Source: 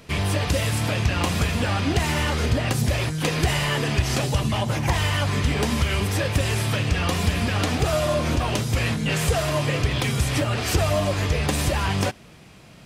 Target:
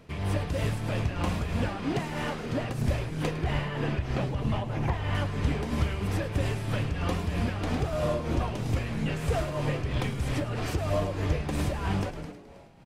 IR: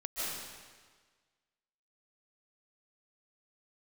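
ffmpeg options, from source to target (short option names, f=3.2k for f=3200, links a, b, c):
-filter_complex "[0:a]asettb=1/sr,asplit=3[a][b][c];[a]atrim=end=1.684[d];[b]atrim=start=1.68:end=2.7,asetpts=PTS-STARTPTS,afade=t=in:d=0.004:c=qsin,afade=t=out:st=1.016:d=0.004:c=qsin,highpass=f=130:w=0.5412,highpass=f=130:w=1.3066[e];[c]atrim=start=2.696[f];[d][e]acrossfade=d=0.004:c1=hsin:c2=qsin[g];[g][f]acrossfade=d=0.004:c1=qsin:c2=hsin,asettb=1/sr,asplit=3[h][i][j];[h]atrim=end=3.314[k];[i]atrim=start=3.31:end=5.15,asetpts=PTS-STARTPTS,afade=t=in:d=0.004:c=qsin,afade=t=out:st=1.836:d=0.004:c=qsin,acrossover=split=4000[l][m];[m]acompressor=threshold=-44dB:ratio=4:attack=1:release=60[n];[l][n]amix=inputs=2:normalize=0[o];[j]atrim=start=5.146[p];[k][o]acrossfade=d=0.004:c1=hsin:c2=qsin[q];[q][p]acrossfade=d=0.004:c1=qsin:c2=hsin,highshelf=f=2.2k:g=-10.5,asplit=9[r][s][t][u][v][w][x][y][z];[s]adelay=106,afreqshift=-130,volume=-9.5dB[aa];[t]adelay=212,afreqshift=-260,volume=-13.7dB[ab];[u]adelay=318,afreqshift=-390,volume=-17.8dB[ac];[v]adelay=424,afreqshift=-520,volume=-22dB[ad];[w]adelay=530,afreqshift=-650,volume=-26.1dB[ae];[x]adelay=636,afreqshift=-780,volume=-30.3dB[af];[y]adelay=742,afreqshift=-910,volume=-34.4dB[ag];[z]adelay=848,afreqshift=-1040,volume=-38.6dB[ah];[r][aa][ab][ac][ad][ae][af][ag][ah]amix=inputs=9:normalize=0,tremolo=f=3.1:d=0.48,volume=-4dB"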